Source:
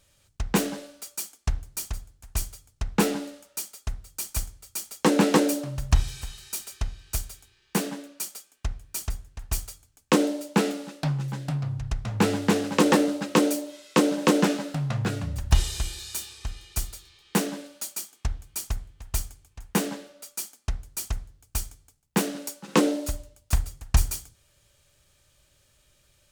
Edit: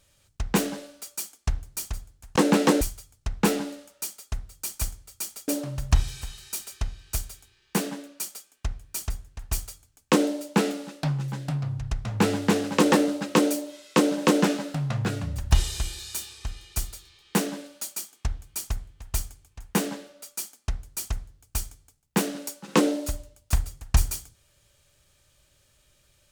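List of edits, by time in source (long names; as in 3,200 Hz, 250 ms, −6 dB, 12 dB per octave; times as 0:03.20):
0:05.03–0:05.48: move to 0:02.36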